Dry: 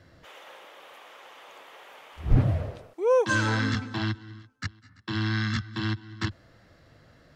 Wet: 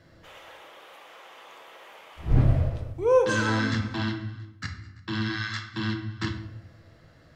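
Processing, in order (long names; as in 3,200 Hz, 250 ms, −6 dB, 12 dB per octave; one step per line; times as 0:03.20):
0:05.28–0:05.73: high-pass filter 1,100 Hz → 450 Hz 12 dB per octave
convolution reverb RT60 0.80 s, pre-delay 6 ms, DRR 4 dB
every ending faded ahead of time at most 380 dB per second
level −1 dB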